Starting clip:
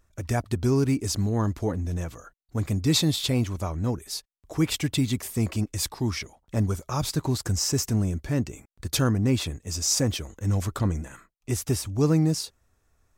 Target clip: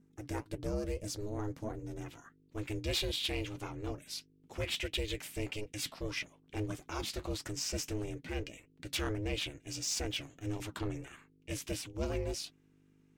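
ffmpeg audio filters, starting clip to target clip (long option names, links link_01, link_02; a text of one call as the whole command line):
ffmpeg -i in.wav -af "asetnsamples=nb_out_samples=441:pad=0,asendcmd='2.06 equalizer g 13.5',equalizer=frequency=2700:width=1.2:gain=2.5,asoftclip=type=tanh:threshold=-15.5dB,flanger=delay=4.1:depth=6.7:regen=-62:speed=1.6:shape=triangular,aeval=exprs='val(0)+0.00126*(sin(2*PI*50*n/s)+sin(2*PI*2*50*n/s)/2+sin(2*PI*3*50*n/s)/3+sin(2*PI*4*50*n/s)/4+sin(2*PI*5*50*n/s)/5)':channel_layout=same,aeval=exprs='val(0)*sin(2*PI*210*n/s)':channel_layout=same,volume=-5dB" out.wav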